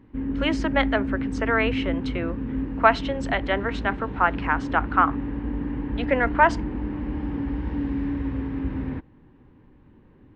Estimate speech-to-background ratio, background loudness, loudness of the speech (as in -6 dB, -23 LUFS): 5.0 dB, -29.5 LUFS, -24.5 LUFS